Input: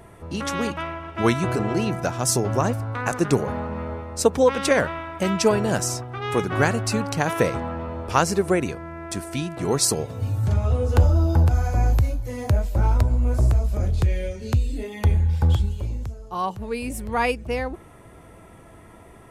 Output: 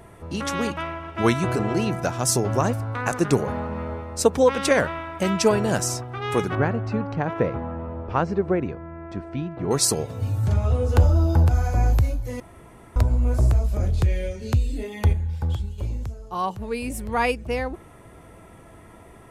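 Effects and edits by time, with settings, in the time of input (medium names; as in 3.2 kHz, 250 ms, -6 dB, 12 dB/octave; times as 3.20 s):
6.55–9.71 s: tape spacing loss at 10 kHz 40 dB
12.40–12.96 s: room tone
15.13–15.78 s: gain -6.5 dB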